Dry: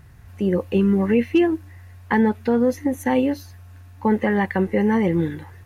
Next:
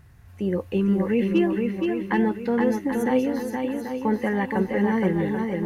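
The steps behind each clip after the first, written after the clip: swung echo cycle 0.785 s, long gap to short 1.5:1, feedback 33%, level -4 dB; gain -4.5 dB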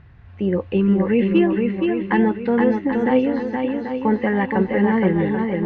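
LPF 3600 Hz 24 dB/oct; gain +4.5 dB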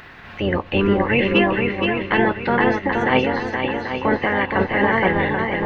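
spectral limiter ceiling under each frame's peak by 20 dB; mismatched tape noise reduction encoder only

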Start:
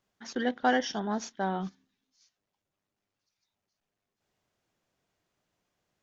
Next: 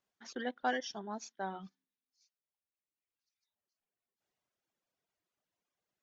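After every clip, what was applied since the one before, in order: reverb removal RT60 1.8 s; low shelf 170 Hz -10 dB; gain -6.5 dB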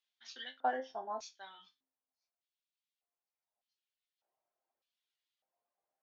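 resonator bank F2 sus4, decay 0.21 s; LFO band-pass square 0.83 Hz 730–3500 Hz; gain +17 dB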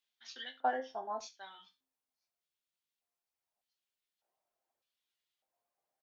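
echo 73 ms -19.5 dB; gain +1 dB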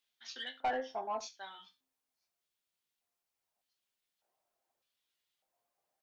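soft clip -30.5 dBFS, distortion -10 dB; gain +3 dB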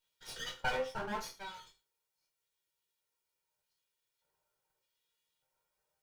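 minimum comb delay 2.1 ms; on a send at -1 dB: reverb, pre-delay 3 ms

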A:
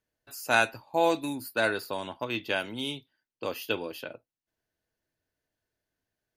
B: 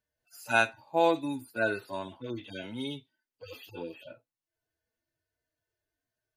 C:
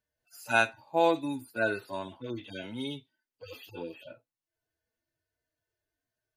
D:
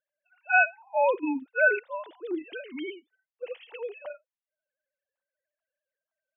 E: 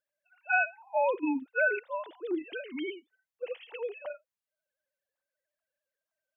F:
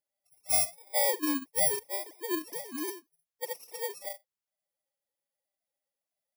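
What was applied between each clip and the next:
median-filter separation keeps harmonic
nothing audible
sine-wave speech; gain +3.5 dB
compressor 3:1, threshold -24 dBFS, peak gain reduction 7 dB
FFT order left unsorted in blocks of 32 samples

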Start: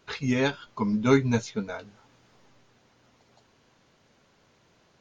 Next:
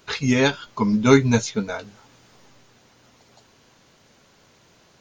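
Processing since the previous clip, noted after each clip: high shelf 5300 Hz +8.5 dB; gain +6 dB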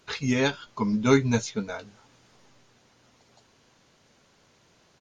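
downsampling 32000 Hz; gain -5.5 dB

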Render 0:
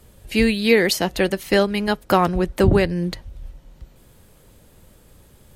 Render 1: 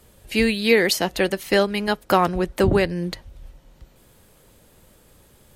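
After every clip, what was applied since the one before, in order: low shelf 210 Hz -6 dB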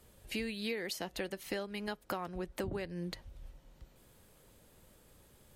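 compressor 6:1, threshold -27 dBFS, peak gain reduction 14.5 dB; gain -8.5 dB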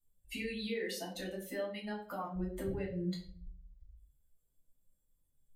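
per-bin expansion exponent 2; limiter -36 dBFS, peak gain reduction 10 dB; reverb RT60 0.50 s, pre-delay 5 ms, DRR -4 dB; gain -1.5 dB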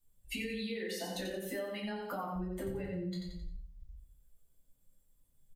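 on a send: feedback echo 88 ms, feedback 35%, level -6 dB; on the sum: compressor, threshold -41 dBFS, peak gain reduction 9 dB; gain +5.5 dB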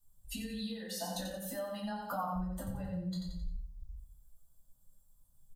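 fixed phaser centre 930 Hz, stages 4; gain +4.5 dB

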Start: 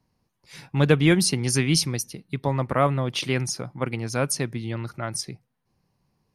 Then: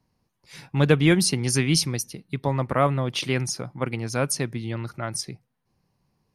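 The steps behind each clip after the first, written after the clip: nothing audible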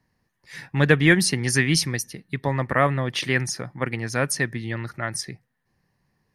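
bell 1800 Hz +15 dB 0.31 oct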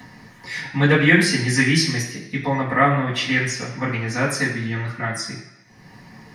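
upward compressor, threshold -25 dBFS; reverb RT60 1.0 s, pre-delay 3 ms, DRR -12.5 dB; gain -8 dB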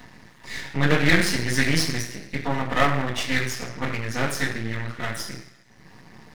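half-wave rectifier

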